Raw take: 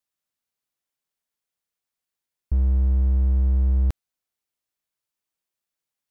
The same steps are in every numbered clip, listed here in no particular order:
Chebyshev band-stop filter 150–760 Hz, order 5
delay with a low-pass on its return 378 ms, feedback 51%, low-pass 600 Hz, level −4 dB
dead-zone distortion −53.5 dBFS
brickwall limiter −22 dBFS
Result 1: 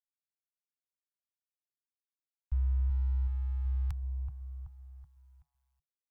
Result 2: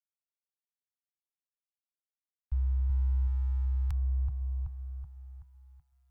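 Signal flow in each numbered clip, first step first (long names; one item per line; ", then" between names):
brickwall limiter, then delay with a low-pass on its return, then dead-zone distortion, then Chebyshev band-stop filter
delay with a low-pass on its return, then dead-zone distortion, then brickwall limiter, then Chebyshev band-stop filter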